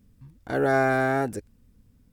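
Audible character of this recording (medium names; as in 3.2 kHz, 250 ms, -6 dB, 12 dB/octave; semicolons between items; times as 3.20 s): noise floor -61 dBFS; spectral tilt -2.0 dB/octave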